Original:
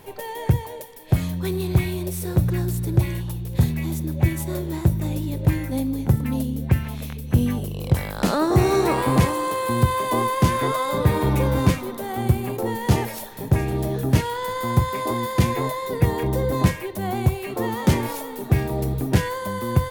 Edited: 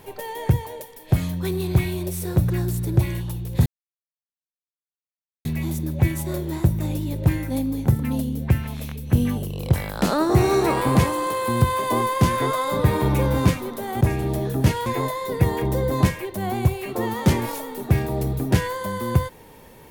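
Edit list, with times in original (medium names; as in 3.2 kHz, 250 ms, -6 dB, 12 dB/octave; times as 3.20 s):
3.66 s: insert silence 1.79 s
12.22–13.50 s: delete
14.35–15.47 s: delete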